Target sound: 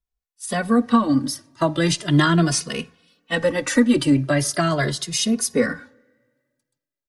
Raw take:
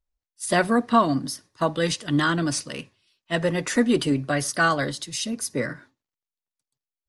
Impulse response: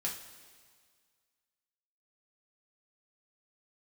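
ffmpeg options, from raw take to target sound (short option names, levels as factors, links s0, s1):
-filter_complex "[0:a]acrossover=split=320[s0][s1];[s1]acompressor=threshold=0.0794:ratio=6[s2];[s0][s2]amix=inputs=2:normalize=0,asplit=2[s3][s4];[1:a]atrim=start_sample=2205,lowpass=2400[s5];[s4][s5]afir=irnorm=-1:irlink=0,volume=0.0794[s6];[s3][s6]amix=inputs=2:normalize=0,dynaudnorm=f=150:g=9:m=3.35,asplit=2[s7][s8];[s8]adelay=2.4,afreqshift=0.39[s9];[s7][s9]amix=inputs=2:normalize=1"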